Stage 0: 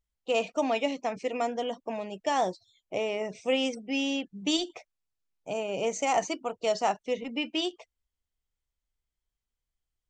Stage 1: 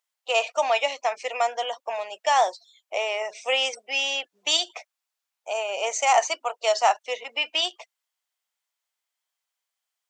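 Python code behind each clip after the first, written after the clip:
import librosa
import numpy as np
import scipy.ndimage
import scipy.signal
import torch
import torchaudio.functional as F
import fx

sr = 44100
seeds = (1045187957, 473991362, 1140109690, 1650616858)

y = scipy.signal.sosfilt(scipy.signal.butter(4, 650.0, 'highpass', fs=sr, output='sos'), x)
y = y * 10.0 ** (8.5 / 20.0)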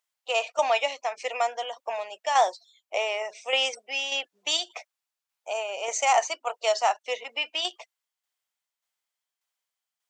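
y = fx.tremolo_shape(x, sr, shape='saw_down', hz=1.7, depth_pct=50)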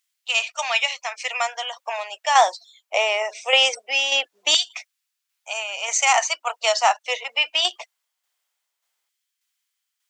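y = fx.filter_lfo_highpass(x, sr, shape='saw_down', hz=0.22, low_hz=350.0, high_hz=2100.0, q=0.74)
y = y * 10.0 ** (8.5 / 20.0)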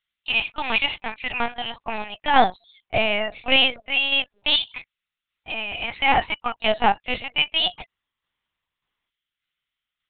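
y = fx.lpc_vocoder(x, sr, seeds[0], excitation='pitch_kept', order=8)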